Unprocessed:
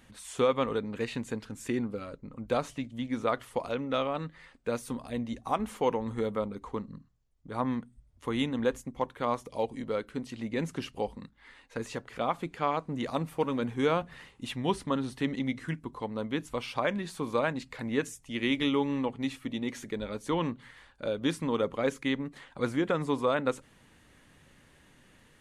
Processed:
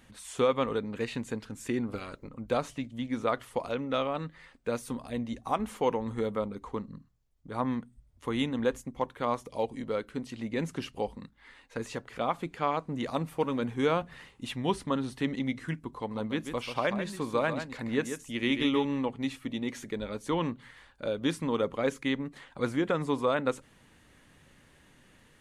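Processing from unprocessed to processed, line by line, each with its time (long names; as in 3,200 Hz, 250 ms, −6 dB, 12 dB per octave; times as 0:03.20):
0:01.87–0:02.27: ceiling on every frequency bin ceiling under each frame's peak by 15 dB
0:15.97–0:18.85: single-tap delay 139 ms −8.5 dB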